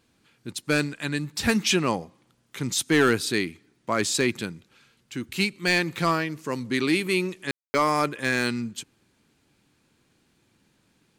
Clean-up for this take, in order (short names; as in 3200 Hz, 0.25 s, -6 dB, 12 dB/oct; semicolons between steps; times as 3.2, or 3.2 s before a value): clip repair -12 dBFS; room tone fill 7.51–7.74